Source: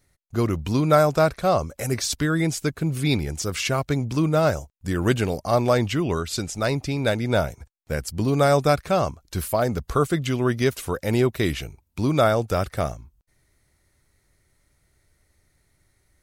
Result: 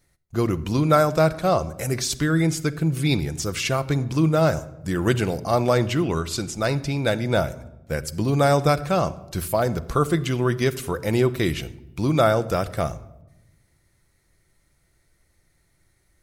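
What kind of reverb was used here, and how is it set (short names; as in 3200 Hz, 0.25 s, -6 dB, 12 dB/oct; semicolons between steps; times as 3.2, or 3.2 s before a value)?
shoebox room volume 3900 m³, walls furnished, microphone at 0.76 m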